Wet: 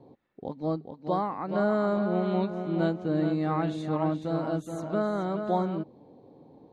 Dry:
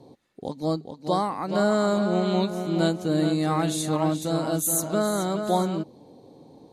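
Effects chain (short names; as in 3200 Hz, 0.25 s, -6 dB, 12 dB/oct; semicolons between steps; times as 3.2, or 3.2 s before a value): LPF 2200 Hz 12 dB/oct; gain -3.5 dB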